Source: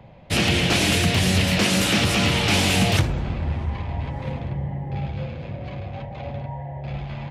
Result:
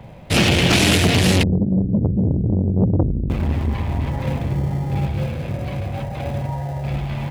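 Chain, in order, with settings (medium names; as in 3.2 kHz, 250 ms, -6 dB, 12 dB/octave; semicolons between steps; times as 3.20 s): in parallel at -11 dB: sample-and-hold 40×; 1.43–3.30 s: on the sum: inverse Chebyshev low-pass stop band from 1.1 kHz, stop band 70 dB; transformer saturation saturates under 410 Hz; trim +5.5 dB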